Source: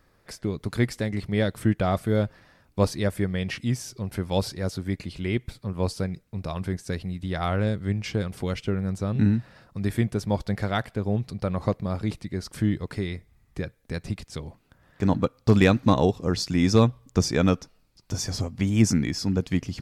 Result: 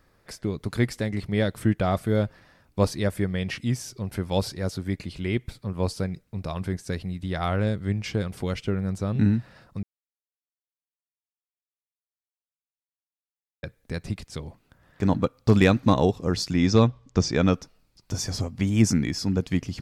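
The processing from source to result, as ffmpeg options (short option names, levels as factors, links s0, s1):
-filter_complex "[0:a]asettb=1/sr,asplit=3[s0][s1][s2];[s0]atrim=end=16.534[s3];[s1]atrim=start=16.53:end=17.54,asetpts=PTS-STARTPTS,afade=t=in:d=0.004:c=qsin,afade=t=out:st=1.006:d=0.004:c=qsin,lowpass=f=6700:w=0.5412,lowpass=f=6700:w=1.3066[s4];[s2]atrim=start=17.536[s5];[s3][s4]acrossfade=d=0.004:c1=hsin:c2=qsin[s6];[s6][s5]acrossfade=d=0.004:c1=qsin:c2=hsin,asplit=3[s7][s8][s9];[s7]atrim=end=9.83,asetpts=PTS-STARTPTS,afade=t=out:st=9.826:d=0.004:c=hsin[s10];[s8]atrim=start=9.83:end=13.63,asetpts=PTS-STARTPTS,volume=0[s11];[s9]atrim=start=13.63,asetpts=PTS-STARTPTS,afade=t=in:d=0.004:c=hsin[s12];[s10][s11][s12]concat=n=3:v=0:a=1"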